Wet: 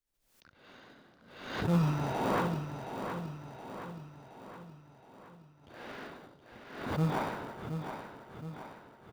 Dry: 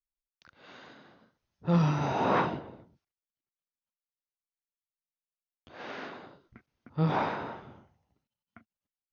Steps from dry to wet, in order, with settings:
in parallel at −10 dB: sample-rate reduction 1,300 Hz, jitter 0%
on the sum: repeating echo 720 ms, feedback 53%, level −8 dB
background raised ahead of every attack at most 71 dB per second
level −5 dB

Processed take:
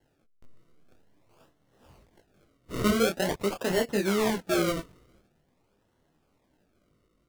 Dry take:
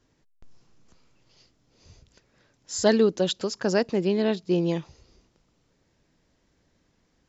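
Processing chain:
low-shelf EQ 190 Hz −6 dB
in parallel at +2.5 dB: brickwall limiter −18 dBFS, peak gain reduction 10.5 dB
on the sum: sample-and-hold swept by an LFO 36×, swing 100% 0.46 Hz
micro pitch shift up and down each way 15 cents
level −3.5 dB

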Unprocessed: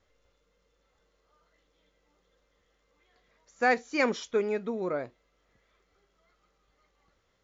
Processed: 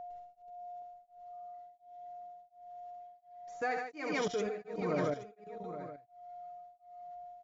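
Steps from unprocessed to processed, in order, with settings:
bass and treble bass +6 dB, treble 0 dB
comb filter 6.5 ms, depth 90%
loudspeakers that aren't time-aligned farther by 25 metres −7 dB, 52 metres −1 dB
output level in coarse steps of 15 dB
steady tone 710 Hz −41 dBFS
single-tap delay 822 ms −11.5 dB
tremolo along a rectified sine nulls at 1.4 Hz
level −1.5 dB

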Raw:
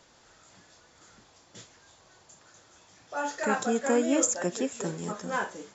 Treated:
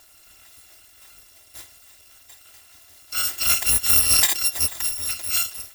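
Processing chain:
samples in bit-reversed order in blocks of 256 samples
level +7.5 dB

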